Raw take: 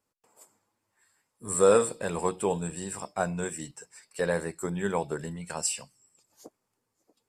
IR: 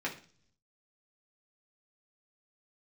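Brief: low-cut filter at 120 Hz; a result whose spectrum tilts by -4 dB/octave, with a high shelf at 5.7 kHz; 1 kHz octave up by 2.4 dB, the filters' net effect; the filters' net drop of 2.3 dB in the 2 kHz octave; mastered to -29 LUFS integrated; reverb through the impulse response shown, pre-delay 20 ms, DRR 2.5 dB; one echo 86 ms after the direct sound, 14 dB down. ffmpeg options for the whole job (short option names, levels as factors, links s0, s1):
-filter_complex "[0:a]highpass=120,equalizer=f=1000:t=o:g=4.5,equalizer=f=2000:t=o:g=-6,highshelf=f=5700:g=5.5,aecho=1:1:86:0.2,asplit=2[s0][s1];[1:a]atrim=start_sample=2205,adelay=20[s2];[s1][s2]afir=irnorm=-1:irlink=0,volume=0.422[s3];[s0][s3]amix=inputs=2:normalize=0,volume=0.75"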